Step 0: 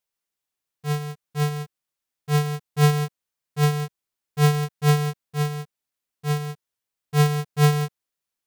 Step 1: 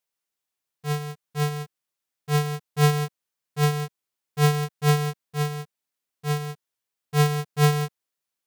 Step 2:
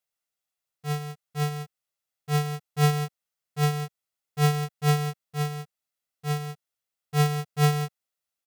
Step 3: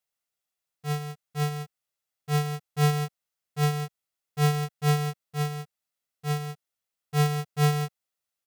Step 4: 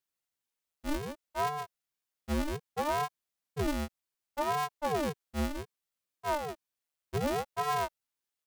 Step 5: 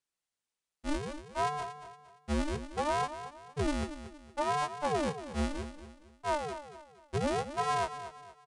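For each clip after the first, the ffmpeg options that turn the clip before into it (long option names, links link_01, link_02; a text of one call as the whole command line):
ffmpeg -i in.wav -af "lowshelf=frequency=84:gain=-8.5" out.wav
ffmpeg -i in.wav -af "aecho=1:1:1.5:0.35,volume=-3dB" out.wav
ffmpeg -i in.wav -af "asoftclip=type=tanh:threshold=-14dB" out.wav
ffmpeg -i in.wav -af "aeval=exprs='0.0668*(abs(mod(val(0)/0.0668+3,4)-2)-1)':channel_layout=same,aeval=exprs='val(0)*sin(2*PI*480*n/s+480*0.85/0.65*sin(2*PI*0.65*n/s))':channel_layout=same" out.wav
ffmpeg -i in.wav -filter_complex "[0:a]asplit=2[link_01][link_02];[link_02]aecho=0:1:232|464|696|928:0.251|0.0904|0.0326|0.0117[link_03];[link_01][link_03]amix=inputs=2:normalize=0,aresample=22050,aresample=44100" out.wav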